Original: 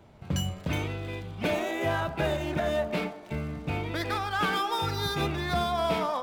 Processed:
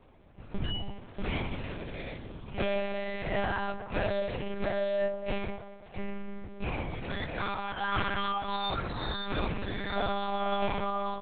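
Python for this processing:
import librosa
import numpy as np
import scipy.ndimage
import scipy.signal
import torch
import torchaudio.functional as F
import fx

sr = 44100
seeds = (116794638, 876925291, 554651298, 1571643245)

y = scipy.signal.sosfilt(scipy.signal.butter(2, 64.0, 'highpass', fs=sr, output='sos'), x)
y = fx.stretch_grains(y, sr, factor=1.8, grain_ms=60.0)
y = fx.lpc_monotone(y, sr, seeds[0], pitch_hz=200.0, order=8)
y = F.gain(torch.from_numpy(y), -1.5).numpy()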